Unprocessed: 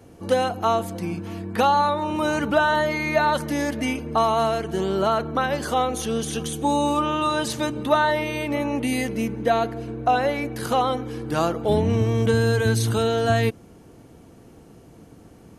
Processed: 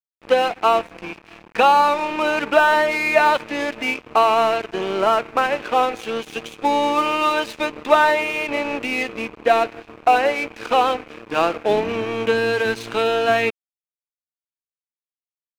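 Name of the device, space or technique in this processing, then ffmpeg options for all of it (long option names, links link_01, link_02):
pocket radio on a weak battery: -filter_complex "[0:a]asettb=1/sr,asplit=3[link_01][link_02][link_03];[link_01]atrim=end=5.004[link_04];[link_02]atrim=start=5:end=5.83,asetpts=PTS-STARTPTS,afade=type=in:duration=0.004:curve=qsin,afade=type=out:start_time=0.826:duration=0.004:curve=qsin,lowpass=2700[link_05];[link_03]atrim=start=5.826[link_06];[link_04][link_05]acrossfade=duration=0.004:curve1=hsin:curve2=qsin[link_07];[link_07][link_06]acrossfade=duration=0.004:curve1=qsin:curve2=hsin,highpass=370,lowpass=3400,aeval=exprs='sgn(val(0))*max(abs(val(0))-0.0158,0)':channel_layout=same,equalizer=frequency=2500:width_type=o:width=0.28:gain=10,volume=6dB"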